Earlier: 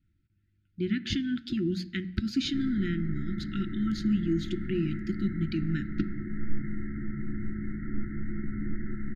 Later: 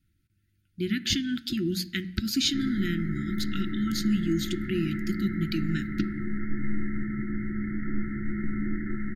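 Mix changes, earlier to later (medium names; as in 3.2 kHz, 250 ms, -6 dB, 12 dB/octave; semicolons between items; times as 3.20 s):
background: send on; master: remove tape spacing loss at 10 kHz 21 dB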